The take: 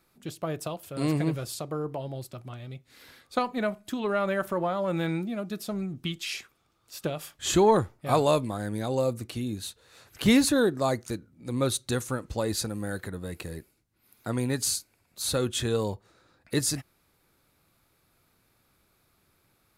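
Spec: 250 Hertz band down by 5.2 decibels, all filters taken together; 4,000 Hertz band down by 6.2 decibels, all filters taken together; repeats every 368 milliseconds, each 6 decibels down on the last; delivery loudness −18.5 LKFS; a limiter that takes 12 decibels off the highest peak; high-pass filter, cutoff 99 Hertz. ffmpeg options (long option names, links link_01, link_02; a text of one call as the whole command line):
ffmpeg -i in.wav -af "highpass=99,equalizer=frequency=250:width_type=o:gain=-6.5,equalizer=frequency=4000:width_type=o:gain=-7.5,alimiter=limit=-23dB:level=0:latency=1,aecho=1:1:368|736|1104|1472|1840|2208:0.501|0.251|0.125|0.0626|0.0313|0.0157,volume=15.5dB" out.wav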